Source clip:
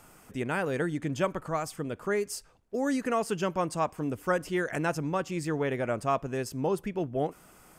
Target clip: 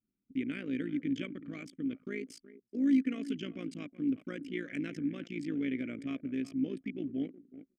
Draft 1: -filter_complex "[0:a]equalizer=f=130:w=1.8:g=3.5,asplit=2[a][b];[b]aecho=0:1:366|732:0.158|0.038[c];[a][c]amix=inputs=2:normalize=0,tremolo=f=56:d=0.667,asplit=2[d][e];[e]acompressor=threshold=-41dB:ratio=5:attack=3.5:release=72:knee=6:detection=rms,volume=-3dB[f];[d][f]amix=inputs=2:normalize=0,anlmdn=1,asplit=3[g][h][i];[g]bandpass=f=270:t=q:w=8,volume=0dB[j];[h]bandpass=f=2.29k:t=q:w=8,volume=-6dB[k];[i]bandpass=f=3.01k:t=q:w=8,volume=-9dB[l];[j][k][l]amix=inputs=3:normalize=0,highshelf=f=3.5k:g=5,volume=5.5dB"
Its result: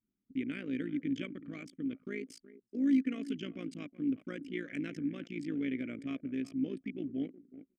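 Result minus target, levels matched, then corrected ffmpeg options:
compressor: peak gain reduction +5.5 dB
-filter_complex "[0:a]equalizer=f=130:w=1.8:g=3.5,asplit=2[a][b];[b]aecho=0:1:366|732:0.158|0.038[c];[a][c]amix=inputs=2:normalize=0,tremolo=f=56:d=0.667,asplit=2[d][e];[e]acompressor=threshold=-34dB:ratio=5:attack=3.5:release=72:knee=6:detection=rms,volume=-3dB[f];[d][f]amix=inputs=2:normalize=0,anlmdn=1,asplit=3[g][h][i];[g]bandpass=f=270:t=q:w=8,volume=0dB[j];[h]bandpass=f=2.29k:t=q:w=8,volume=-6dB[k];[i]bandpass=f=3.01k:t=q:w=8,volume=-9dB[l];[j][k][l]amix=inputs=3:normalize=0,highshelf=f=3.5k:g=5,volume=5.5dB"

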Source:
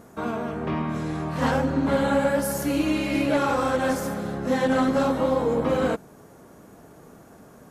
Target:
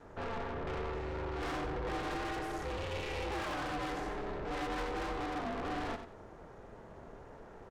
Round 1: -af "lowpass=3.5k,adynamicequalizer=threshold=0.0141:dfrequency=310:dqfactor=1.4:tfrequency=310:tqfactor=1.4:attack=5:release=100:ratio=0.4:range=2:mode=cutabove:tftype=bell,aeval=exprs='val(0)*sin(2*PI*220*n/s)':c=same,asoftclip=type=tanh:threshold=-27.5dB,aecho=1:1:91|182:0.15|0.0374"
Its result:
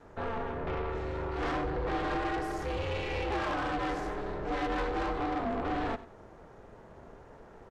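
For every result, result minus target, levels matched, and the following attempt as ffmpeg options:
echo-to-direct -7 dB; soft clip: distortion -5 dB
-af "lowpass=3.5k,adynamicequalizer=threshold=0.0141:dfrequency=310:dqfactor=1.4:tfrequency=310:tqfactor=1.4:attack=5:release=100:ratio=0.4:range=2:mode=cutabove:tftype=bell,aeval=exprs='val(0)*sin(2*PI*220*n/s)':c=same,asoftclip=type=tanh:threshold=-27.5dB,aecho=1:1:91|182|273:0.335|0.0837|0.0209"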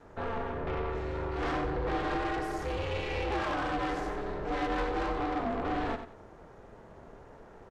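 soft clip: distortion -5 dB
-af "lowpass=3.5k,adynamicequalizer=threshold=0.0141:dfrequency=310:dqfactor=1.4:tfrequency=310:tqfactor=1.4:attack=5:release=100:ratio=0.4:range=2:mode=cutabove:tftype=bell,aeval=exprs='val(0)*sin(2*PI*220*n/s)':c=same,asoftclip=type=tanh:threshold=-35.5dB,aecho=1:1:91|182|273:0.335|0.0837|0.0209"

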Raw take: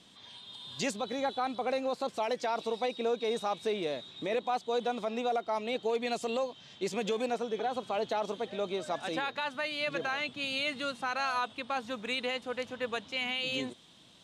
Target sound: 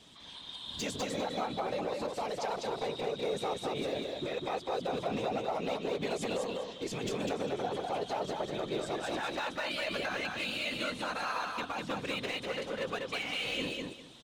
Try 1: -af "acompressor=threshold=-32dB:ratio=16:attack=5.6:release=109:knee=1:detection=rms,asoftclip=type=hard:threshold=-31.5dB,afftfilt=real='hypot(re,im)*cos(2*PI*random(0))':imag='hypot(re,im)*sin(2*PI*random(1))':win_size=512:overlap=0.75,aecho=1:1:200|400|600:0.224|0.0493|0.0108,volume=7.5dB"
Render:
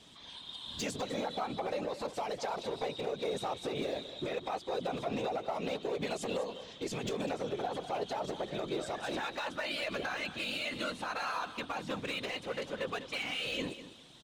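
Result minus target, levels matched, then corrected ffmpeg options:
echo-to-direct -10 dB
-af "acompressor=threshold=-32dB:ratio=16:attack=5.6:release=109:knee=1:detection=rms,asoftclip=type=hard:threshold=-31.5dB,afftfilt=real='hypot(re,im)*cos(2*PI*random(0))':imag='hypot(re,im)*sin(2*PI*random(1))':win_size=512:overlap=0.75,aecho=1:1:200|400|600:0.708|0.156|0.0343,volume=7.5dB"

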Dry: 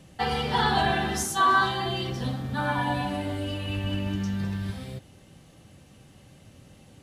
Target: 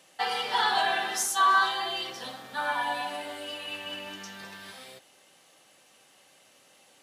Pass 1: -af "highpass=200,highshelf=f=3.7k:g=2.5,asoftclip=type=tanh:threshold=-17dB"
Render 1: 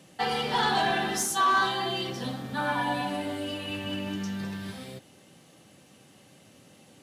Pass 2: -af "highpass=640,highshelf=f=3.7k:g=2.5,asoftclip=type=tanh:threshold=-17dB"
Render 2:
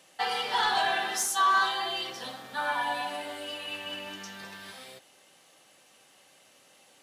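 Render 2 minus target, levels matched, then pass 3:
soft clip: distortion +11 dB
-af "highpass=640,highshelf=f=3.7k:g=2.5,asoftclip=type=tanh:threshold=-10dB"

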